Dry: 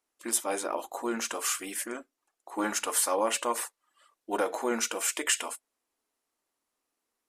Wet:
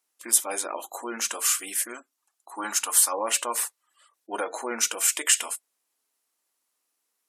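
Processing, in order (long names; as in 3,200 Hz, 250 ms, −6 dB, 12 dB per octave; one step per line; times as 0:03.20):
0:01.95–0:03.13: octave-band graphic EQ 125/500/1,000/2,000 Hz −8/−6/+3/−3 dB
gate on every frequency bin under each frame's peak −30 dB strong
spectral tilt +2.5 dB per octave
Opus 96 kbit/s 48,000 Hz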